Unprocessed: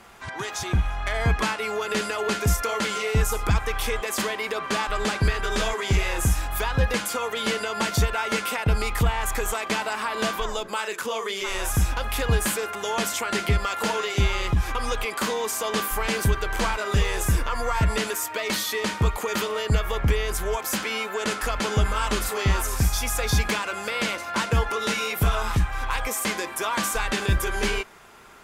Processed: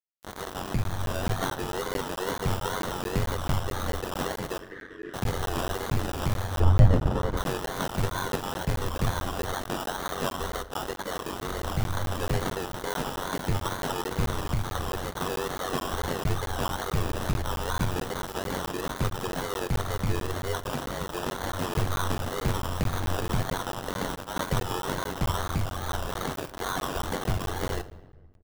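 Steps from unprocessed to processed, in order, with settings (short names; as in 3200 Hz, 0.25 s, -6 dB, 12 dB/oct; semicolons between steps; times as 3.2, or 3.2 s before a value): feedback echo 68 ms, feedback 54%, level -22.5 dB; sample-and-hold 19×; wow and flutter 150 cents; bit-crush 5-bit; 4.59–5.14 double band-pass 810 Hz, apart 2.3 oct; 6.6–7.37 tilt -3.5 dB/oct; shoebox room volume 870 m³, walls mixed, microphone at 0.36 m; ring modulator 46 Hz; crackling interface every 0.22 s, samples 512, zero, from 0.84; gain -2.5 dB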